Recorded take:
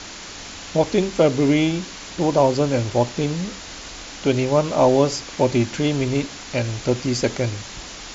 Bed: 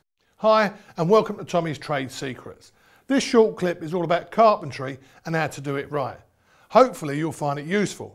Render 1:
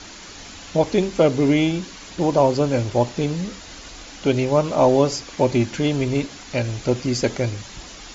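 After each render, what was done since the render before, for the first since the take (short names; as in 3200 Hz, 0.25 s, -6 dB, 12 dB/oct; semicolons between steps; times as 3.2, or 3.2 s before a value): denoiser 6 dB, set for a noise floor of -37 dBFS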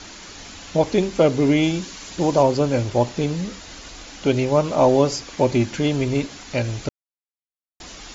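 1.63–2.43 high shelf 5500 Hz +7 dB; 6.89–7.8 mute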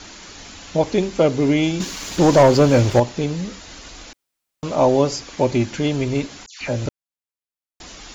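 1.8–3 sample leveller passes 2; 4.13–4.63 room tone; 6.46–6.86 dispersion lows, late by 0.147 s, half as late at 2100 Hz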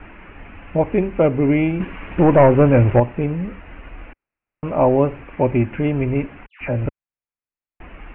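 steep low-pass 2700 Hz 72 dB/oct; low shelf 81 Hz +10 dB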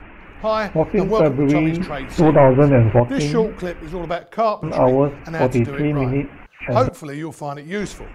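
add bed -2.5 dB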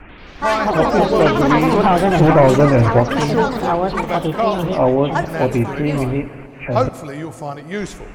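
echoes that change speed 89 ms, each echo +5 st, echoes 3; plate-style reverb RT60 3.9 s, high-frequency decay 0.55×, DRR 14.5 dB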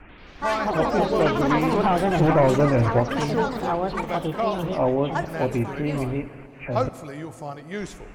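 gain -7 dB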